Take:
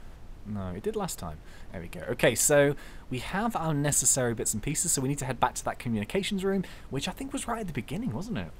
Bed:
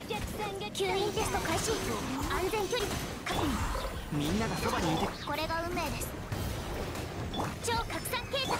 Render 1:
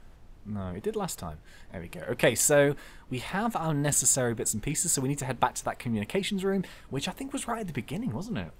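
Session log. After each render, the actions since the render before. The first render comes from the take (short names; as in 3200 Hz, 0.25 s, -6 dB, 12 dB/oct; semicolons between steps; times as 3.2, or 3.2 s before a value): noise print and reduce 6 dB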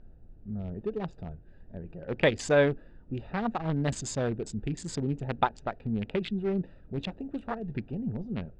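Wiener smoothing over 41 samples; LPF 5100 Hz 24 dB/oct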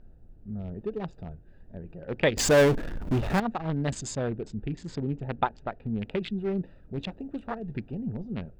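2.37–3.4 power-law curve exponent 0.5; 4.15–6.02 air absorption 140 m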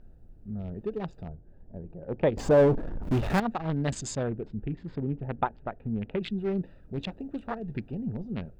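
1.28–3.03 EQ curve 880 Hz 0 dB, 1900 Hz -12 dB, 12000 Hz -21 dB; 4.23–6.21 air absorption 390 m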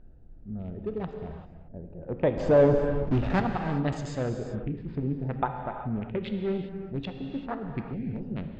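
air absorption 150 m; non-linear reverb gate 0.42 s flat, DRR 4.5 dB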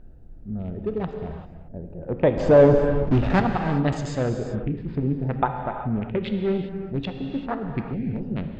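gain +5.5 dB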